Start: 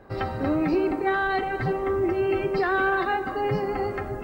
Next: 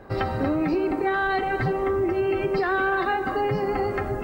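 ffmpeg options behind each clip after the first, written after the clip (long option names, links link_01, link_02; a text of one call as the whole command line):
ffmpeg -i in.wav -af "acompressor=threshold=-25dB:ratio=6,volume=4.5dB" out.wav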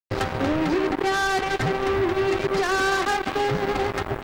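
ffmpeg -i in.wav -af "acrusher=bits=3:mix=0:aa=0.5" out.wav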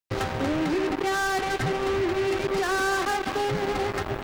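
ffmpeg -i in.wav -af "asoftclip=type=tanh:threshold=-24.5dB,volume=3.5dB" out.wav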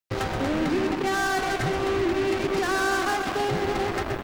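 ffmpeg -i in.wav -filter_complex "[0:a]asplit=6[link_01][link_02][link_03][link_04][link_05][link_06];[link_02]adelay=126,afreqshift=-54,volume=-8dB[link_07];[link_03]adelay=252,afreqshift=-108,volume=-15.1dB[link_08];[link_04]adelay=378,afreqshift=-162,volume=-22.3dB[link_09];[link_05]adelay=504,afreqshift=-216,volume=-29.4dB[link_10];[link_06]adelay=630,afreqshift=-270,volume=-36.5dB[link_11];[link_01][link_07][link_08][link_09][link_10][link_11]amix=inputs=6:normalize=0" out.wav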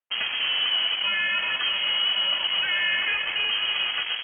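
ffmpeg -i in.wav -af "lowpass=frequency=2800:width_type=q:width=0.5098,lowpass=frequency=2800:width_type=q:width=0.6013,lowpass=frequency=2800:width_type=q:width=0.9,lowpass=frequency=2800:width_type=q:width=2.563,afreqshift=-3300" out.wav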